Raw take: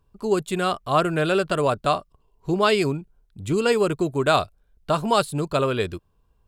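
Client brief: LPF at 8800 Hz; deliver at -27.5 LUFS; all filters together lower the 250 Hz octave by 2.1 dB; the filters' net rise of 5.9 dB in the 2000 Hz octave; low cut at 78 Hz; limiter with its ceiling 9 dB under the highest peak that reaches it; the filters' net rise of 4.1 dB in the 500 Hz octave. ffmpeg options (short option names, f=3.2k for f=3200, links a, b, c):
-af "highpass=78,lowpass=8.8k,equalizer=f=250:t=o:g=-7.5,equalizer=f=500:t=o:g=7,equalizer=f=2k:t=o:g=8.5,volume=-5.5dB,alimiter=limit=-16dB:level=0:latency=1"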